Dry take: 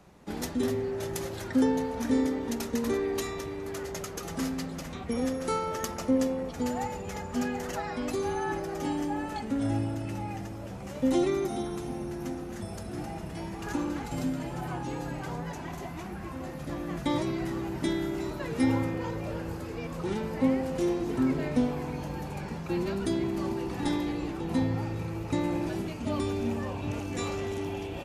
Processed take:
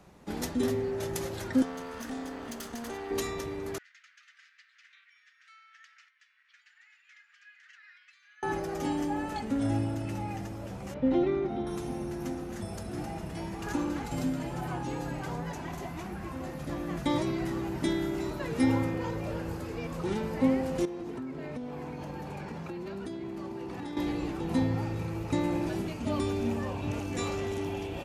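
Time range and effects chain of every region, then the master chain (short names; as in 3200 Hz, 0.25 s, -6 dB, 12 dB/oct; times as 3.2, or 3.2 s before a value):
1.62–3.11 minimum comb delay 0.64 ms + low shelf 360 Hz -9.5 dB + compressor 2.5:1, threshold -36 dBFS
3.78–8.43 compressor 2.5:1, threshold -34 dBFS + steep high-pass 1600 Hz 48 dB/oct + tape spacing loss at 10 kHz 36 dB
10.94–11.67 air absorption 350 m + notch 1100 Hz
20.85–23.97 HPF 120 Hz 6 dB/oct + high shelf 4700 Hz -7.5 dB + compressor 12:1, threshold -34 dBFS
whole clip: dry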